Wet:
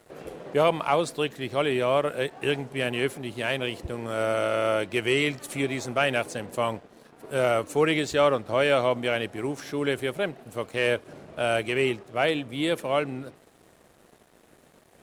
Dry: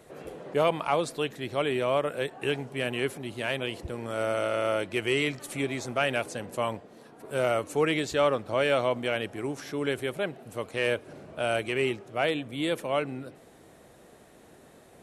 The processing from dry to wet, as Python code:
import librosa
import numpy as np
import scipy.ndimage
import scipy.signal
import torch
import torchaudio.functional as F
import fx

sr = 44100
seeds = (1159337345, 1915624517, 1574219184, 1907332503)

y = np.sign(x) * np.maximum(np.abs(x) - 10.0 ** (-56.0 / 20.0), 0.0)
y = F.gain(torch.from_numpy(y), 3.0).numpy()